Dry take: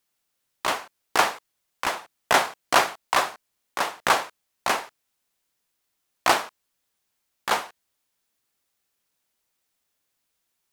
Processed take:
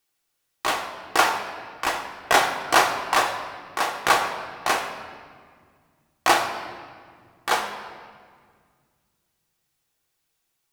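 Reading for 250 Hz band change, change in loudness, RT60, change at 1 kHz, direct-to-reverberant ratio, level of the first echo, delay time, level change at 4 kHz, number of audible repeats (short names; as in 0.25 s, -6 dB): +2.5 dB, +1.5 dB, 1.9 s, +2.5 dB, 2.0 dB, none, none, +1.5 dB, none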